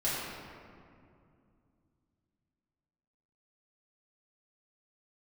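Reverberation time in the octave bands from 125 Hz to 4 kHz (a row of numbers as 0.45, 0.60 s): 3.7, 3.4, 2.6, 2.3, 1.8, 1.2 s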